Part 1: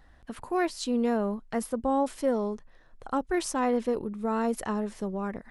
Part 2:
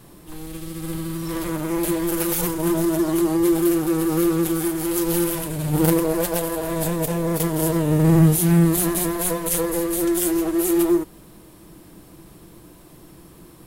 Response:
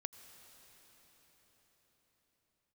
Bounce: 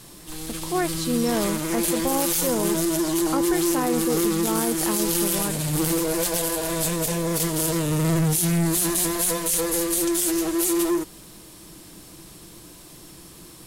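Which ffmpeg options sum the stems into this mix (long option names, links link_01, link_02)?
-filter_complex "[0:a]adelay=200,volume=3dB[link_01];[1:a]asoftclip=type=tanh:threshold=-16.5dB,equalizer=frequency=6000:width=0.43:gain=12.5,volume=-1.5dB[link_02];[link_01][link_02]amix=inputs=2:normalize=0,alimiter=limit=-13.5dB:level=0:latency=1:release=10"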